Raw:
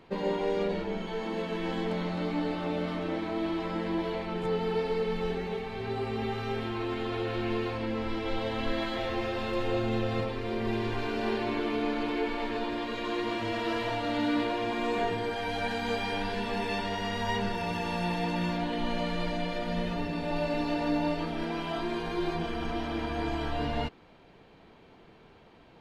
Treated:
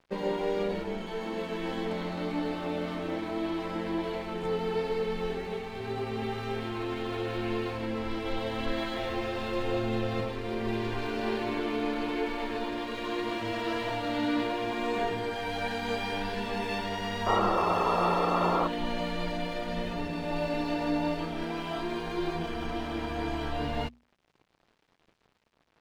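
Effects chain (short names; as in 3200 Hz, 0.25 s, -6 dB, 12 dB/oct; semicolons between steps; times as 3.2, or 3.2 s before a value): painted sound noise, 17.26–18.68, 320–1400 Hz -27 dBFS; crossover distortion -51.5 dBFS; notches 60/120/180/240 Hz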